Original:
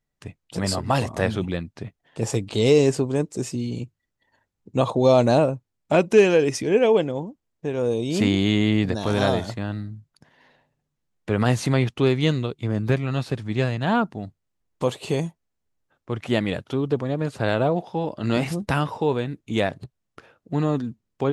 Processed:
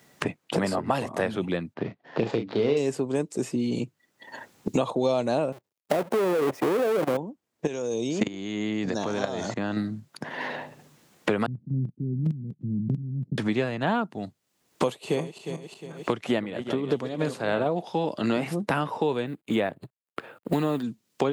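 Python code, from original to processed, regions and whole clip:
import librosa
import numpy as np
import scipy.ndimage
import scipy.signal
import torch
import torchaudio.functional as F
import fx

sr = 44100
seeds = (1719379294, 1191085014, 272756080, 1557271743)

y = fx.chain(x, sr, fx.median_filter(points=15),
    fx.lowpass(hz=4200.0, slope=24),
    fx.doubler(ms=35.0, db=-6.5), at=(1.74, 2.77))
y = fx.chain(y, sr, fx.halfwave_hold(),
    fx.peak_eq(hz=570.0, db=9.0, octaves=1.6),
    fx.level_steps(step_db=20), at=(5.52, 7.17))
y = fx.chain(y, sr, fx.lowpass_res(hz=6500.0, q=6.0),
    fx.level_steps(step_db=18), at=(7.67, 9.77))
y = fx.chain(y, sr, fx.block_float(bits=3),
    fx.cheby2_lowpass(hz=1100.0, order=4, stop_db=80),
    fx.level_steps(step_db=11), at=(11.46, 13.38))
y = fx.chain(y, sr, fx.reverse_delay_fb(ms=179, feedback_pct=43, wet_db=-10.5),
    fx.tremolo(hz=3.3, depth=0.68), at=(14.85, 17.66))
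y = fx.chain(y, sr, fx.law_mismatch(coded='A'),
    fx.peak_eq(hz=5800.0, db=-14.0, octaves=0.37), at=(19.26, 20.83))
y = scipy.signal.sosfilt(scipy.signal.butter(2, 190.0, 'highpass', fs=sr, output='sos'), y)
y = fx.dynamic_eq(y, sr, hz=5600.0, q=1.0, threshold_db=-46.0, ratio=4.0, max_db=-5)
y = fx.band_squash(y, sr, depth_pct=100)
y = y * librosa.db_to_amplitude(-2.0)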